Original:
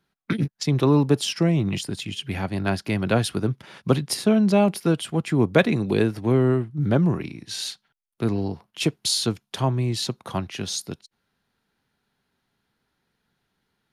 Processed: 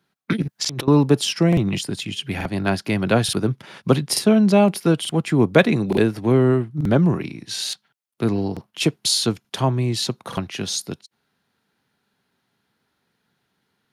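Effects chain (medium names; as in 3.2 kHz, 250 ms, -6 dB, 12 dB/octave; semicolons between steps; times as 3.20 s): high-pass 100 Hz 12 dB/octave; 0.42–0.88 s: compressor with a negative ratio -32 dBFS, ratio -1; crackling interface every 0.88 s, samples 2048, repeat, from 0.60 s; trim +3.5 dB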